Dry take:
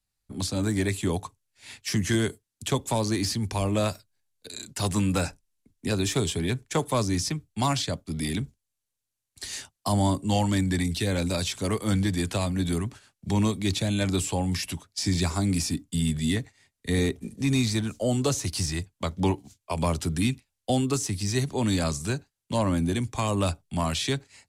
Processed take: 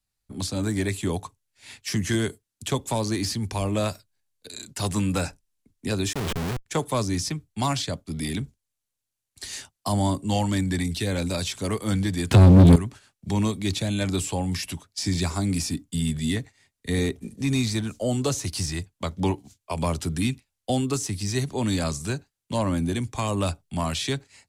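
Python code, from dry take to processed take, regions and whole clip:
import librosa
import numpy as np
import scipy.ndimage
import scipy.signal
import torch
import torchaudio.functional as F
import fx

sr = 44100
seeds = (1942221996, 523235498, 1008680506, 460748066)

y = fx.chain(x, sr, fx.peak_eq(hz=9700.0, db=-6.5, octaves=1.0),
    fx.schmitt(flips_db=-29.5), at=(6.13, 6.66))
y = fx.chain(y, sr, fx.bass_treble(bass_db=14, treble_db=-7),
    fx.leveller(passes=3),
    fx.highpass(hz=41.0, slope=12), at=(12.31, 12.76))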